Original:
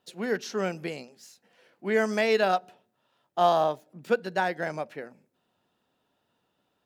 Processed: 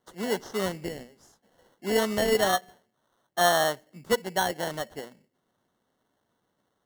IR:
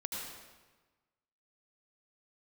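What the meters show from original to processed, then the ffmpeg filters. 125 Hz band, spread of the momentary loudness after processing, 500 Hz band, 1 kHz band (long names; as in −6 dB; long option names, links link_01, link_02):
+0.5 dB, 15 LU, −0.5 dB, −1.0 dB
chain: -filter_complex "[0:a]highshelf=frequency=6400:gain=-10,acrossover=split=5200[link_01][link_02];[link_01]acrusher=samples=18:mix=1:aa=0.000001[link_03];[link_03][link_02]amix=inputs=2:normalize=0"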